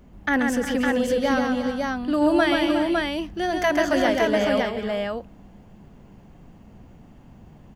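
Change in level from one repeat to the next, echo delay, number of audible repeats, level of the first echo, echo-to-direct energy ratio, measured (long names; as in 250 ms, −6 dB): repeats not evenly spaced, 134 ms, 5, −4.0 dB, 0.0 dB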